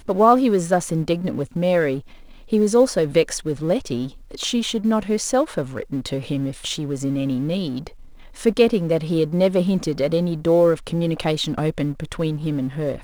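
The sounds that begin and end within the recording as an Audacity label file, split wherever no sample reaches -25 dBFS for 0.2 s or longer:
2.520000	4.070000	sound
4.350000	7.870000	sound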